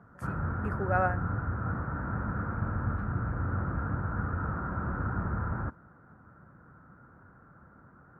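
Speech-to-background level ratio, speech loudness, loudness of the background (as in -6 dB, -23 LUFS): 1.0 dB, -32.5 LUFS, -33.5 LUFS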